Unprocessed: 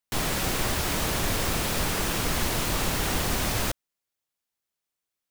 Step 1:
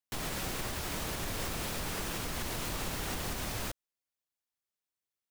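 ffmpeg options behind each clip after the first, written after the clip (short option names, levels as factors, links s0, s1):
-af "alimiter=limit=0.119:level=0:latency=1:release=102,volume=0.422"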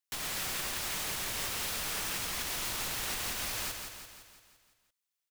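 -filter_complex "[0:a]tiltshelf=f=870:g=-6.5,asplit=2[s0][s1];[s1]aecho=0:1:170|340|510|680|850|1020|1190:0.501|0.276|0.152|0.0834|0.0459|0.0252|0.0139[s2];[s0][s2]amix=inputs=2:normalize=0,volume=0.708"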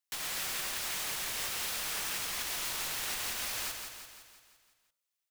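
-af "lowshelf=f=350:g=-7.5,bandreject=f=45.15:t=h:w=4,bandreject=f=90.3:t=h:w=4,bandreject=f=135.45:t=h:w=4,bandreject=f=180.6:t=h:w=4,bandreject=f=225.75:t=h:w=4,bandreject=f=270.9:t=h:w=4,bandreject=f=316.05:t=h:w=4,bandreject=f=361.2:t=h:w=4,bandreject=f=406.35:t=h:w=4,bandreject=f=451.5:t=h:w=4,bandreject=f=496.65:t=h:w=4,bandreject=f=541.8:t=h:w=4,bandreject=f=586.95:t=h:w=4,bandreject=f=632.1:t=h:w=4,bandreject=f=677.25:t=h:w=4,bandreject=f=722.4:t=h:w=4,bandreject=f=767.55:t=h:w=4,bandreject=f=812.7:t=h:w=4,bandreject=f=857.85:t=h:w=4,bandreject=f=903:t=h:w=4,bandreject=f=948.15:t=h:w=4,bandreject=f=993.3:t=h:w=4,bandreject=f=1038.45:t=h:w=4,bandreject=f=1083.6:t=h:w=4,bandreject=f=1128.75:t=h:w=4,bandreject=f=1173.9:t=h:w=4,bandreject=f=1219.05:t=h:w=4,bandreject=f=1264.2:t=h:w=4,bandreject=f=1309.35:t=h:w=4,bandreject=f=1354.5:t=h:w=4,bandreject=f=1399.65:t=h:w=4,bandreject=f=1444.8:t=h:w=4"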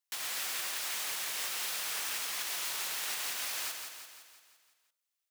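-af "highpass=f=560:p=1"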